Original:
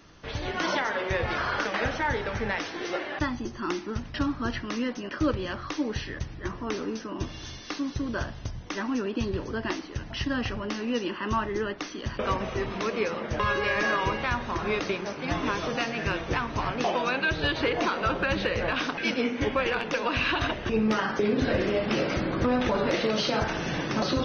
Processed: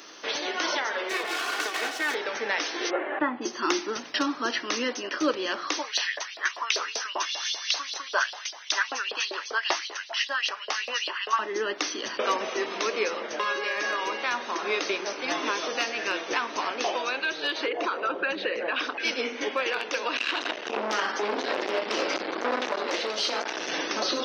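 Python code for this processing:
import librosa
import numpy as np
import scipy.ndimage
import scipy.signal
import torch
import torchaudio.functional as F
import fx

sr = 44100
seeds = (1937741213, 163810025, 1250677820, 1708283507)

y = fx.lower_of_two(x, sr, delay_ms=2.7, at=(1.09, 2.15))
y = fx.gaussian_blur(y, sr, sigma=4.3, at=(2.89, 3.41), fade=0.02)
y = fx.filter_lfo_highpass(y, sr, shape='saw_up', hz=5.1, low_hz=570.0, high_hz=4400.0, q=3.2, at=(5.78, 11.39))
y = fx.envelope_sharpen(y, sr, power=1.5, at=(17.65, 18.99), fade=0.02)
y = fx.transformer_sat(y, sr, knee_hz=820.0, at=(20.17, 23.72))
y = scipy.signal.sosfilt(scipy.signal.butter(4, 310.0, 'highpass', fs=sr, output='sos'), y)
y = fx.high_shelf(y, sr, hz=3500.0, db=10.5)
y = fx.rider(y, sr, range_db=10, speed_s=0.5)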